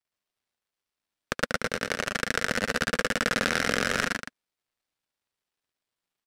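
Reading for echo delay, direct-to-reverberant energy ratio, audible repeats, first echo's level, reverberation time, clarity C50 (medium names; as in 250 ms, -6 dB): 73 ms, no reverb, 3, -6.5 dB, no reverb, no reverb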